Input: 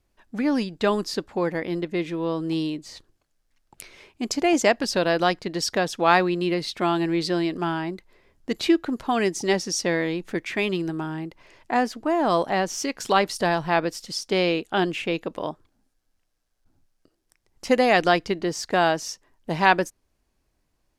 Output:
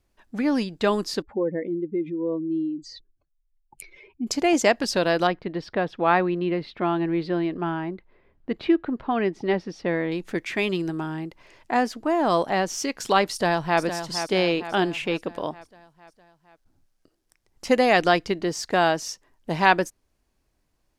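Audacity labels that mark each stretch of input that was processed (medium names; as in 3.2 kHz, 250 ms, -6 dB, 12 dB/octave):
1.220000	4.270000	spectral contrast enhancement exponent 2.2
5.270000	10.120000	distance through air 390 m
13.310000	13.800000	echo throw 460 ms, feedback 55%, level -9 dB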